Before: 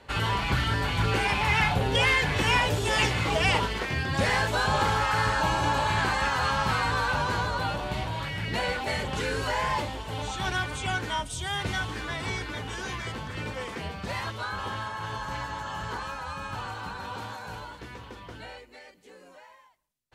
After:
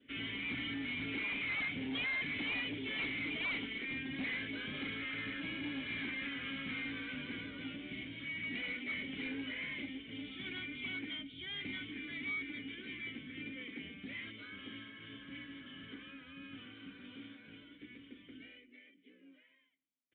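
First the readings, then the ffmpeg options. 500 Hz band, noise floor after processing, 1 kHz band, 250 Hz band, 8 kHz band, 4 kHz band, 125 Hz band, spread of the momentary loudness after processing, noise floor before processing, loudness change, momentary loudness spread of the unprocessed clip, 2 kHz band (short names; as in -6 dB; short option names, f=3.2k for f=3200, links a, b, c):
-20.5 dB, -66 dBFS, -28.0 dB, -6.5 dB, under -40 dB, -11.5 dB, -22.5 dB, 15 LU, -52 dBFS, -12.5 dB, 13 LU, -10.5 dB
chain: -filter_complex "[0:a]adynamicequalizer=threshold=0.00631:dfrequency=2200:dqfactor=4.1:tfrequency=2200:tqfactor=4.1:attack=5:release=100:ratio=0.375:range=3:mode=boostabove:tftype=bell,asplit=3[a][b][c];[a]bandpass=f=270:t=q:w=8,volume=0dB[d];[b]bandpass=f=2.29k:t=q:w=8,volume=-6dB[e];[c]bandpass=f=3.01k:t=q:w=8,volume=-9dB[f];[d][e][f]amix=inputs=3:normalize=0,aresample=8000,asoftclip=type=tanh:threshold=-37dB,aresample=44100,volume=2.5dB"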